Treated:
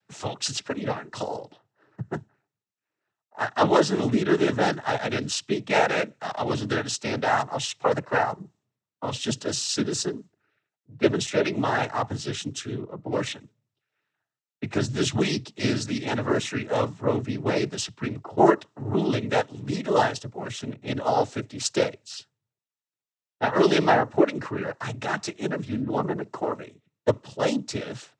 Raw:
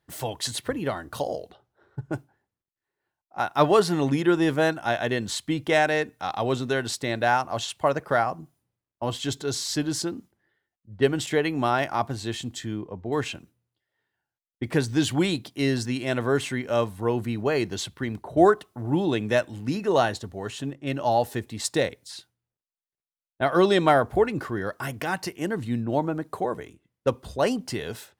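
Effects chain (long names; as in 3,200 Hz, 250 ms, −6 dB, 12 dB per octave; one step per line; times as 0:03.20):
cochlear-implant simulation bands 12
dynamic equaliser 5,900 Hz, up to +4 dB, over −47 dBFS, Q 1.4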